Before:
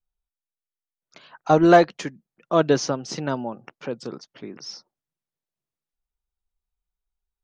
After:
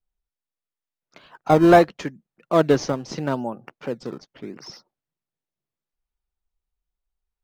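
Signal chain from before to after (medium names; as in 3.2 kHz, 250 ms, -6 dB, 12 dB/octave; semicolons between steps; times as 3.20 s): in parallel at -12 dB: decimation with a swept rate 18×, swing 160% 0.77 Hz; on the sum: treble shelf 5.6 kHz -9.5 dB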